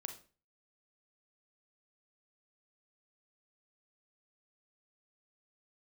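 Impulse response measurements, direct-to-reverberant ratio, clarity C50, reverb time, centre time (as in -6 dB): 5.5 dB, 10.0 dB, 0.35 s, 13 ms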